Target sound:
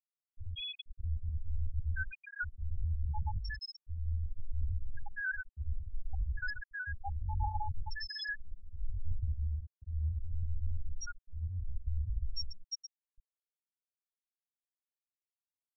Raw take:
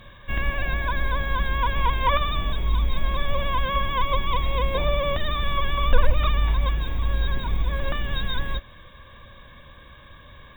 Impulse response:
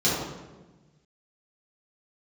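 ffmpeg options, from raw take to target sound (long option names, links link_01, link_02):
-filter_complex "[0:a]acrossover=split=750[link_01][link_02];[link_01]aeval=exprs='val(0)*(1-1/2+1/2*cos(2*PI*1*n/s))':channel_layout=same[link_03];[link_02]aeval=exprs='val(0)*(1-1/2-1/2*cos(2*PI*1*n/s))':channel_layout=same[link_04];[link_03][link_04]amix=inputs=2:normalize=0,asetrate=66075,aresample=44100,atempo=0.66742,acrossover=split=720[link_05][link_06];[link_06]volume=24.5dB,asoftclip=hard,volume=-24.5dB[link_07];[link_05][link_07]amix=inputs=2:normalize=0,equalizer=frequency=2100:width_type=o:width=0.9:gain=-9,aecho=1:1:80|160|240|320:0.531|0.196|0.0727|0.0269,areverse,acompressor=threshold=-30dB:ratio=16,areverse,atempo=0.67,bandreject=frequency=60:width_type=h:width=6,bandreject=frequency=120:width_type=h:width=6,bandreject=frequency=180:width_type=h:width=6,bandreject=frequency=240:width_type=h:width=6,bandreject=frequency=300:width_type=h:width=6,bandreject=frequency=360:width_type=h:width=6,afftfilt=real='re*gte(hypot(re,im),0.112)':imag='im*gte(hypot(re,im),0.112)':win_size=1024:overlap=0.75,volume=2dB"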